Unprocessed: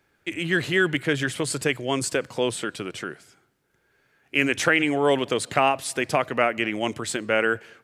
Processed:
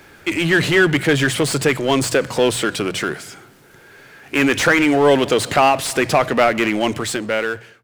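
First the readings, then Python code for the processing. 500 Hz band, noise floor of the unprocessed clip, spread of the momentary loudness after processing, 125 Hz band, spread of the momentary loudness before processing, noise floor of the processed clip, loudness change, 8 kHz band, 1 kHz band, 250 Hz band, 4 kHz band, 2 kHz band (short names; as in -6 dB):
+7.5 dB, -68 dBFS, 9 LU, +8.5 dB, 10 LU, -46 dBFS, +7.0 dB, +6.5 dB, +7.0 dB, +8.5 dB, +7.0 dB, +6.0 dB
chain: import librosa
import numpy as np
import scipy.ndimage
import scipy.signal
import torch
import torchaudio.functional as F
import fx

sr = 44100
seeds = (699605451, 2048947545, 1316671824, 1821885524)

y = fx.fade_out_tail(x, sr, length_s=1.24)
y = fx.hum_notches(y, sr, base_hz=60, count=3)
y = fx.power_curve(y, sr, exponent=0.7)
y = fx.slew_limit(y, sr, full_power_hz=370.0)
y = y * librosa.db_to_amplitude(3.5)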